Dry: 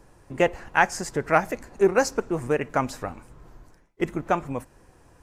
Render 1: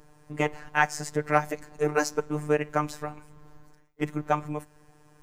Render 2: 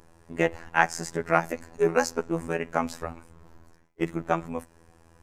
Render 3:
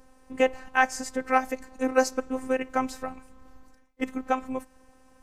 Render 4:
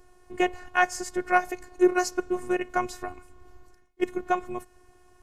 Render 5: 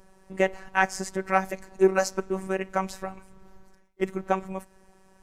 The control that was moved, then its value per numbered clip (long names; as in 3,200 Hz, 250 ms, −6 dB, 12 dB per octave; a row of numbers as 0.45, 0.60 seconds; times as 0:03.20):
phases set to zero, frequency: 150, 83, 260, 360, 190 Hertz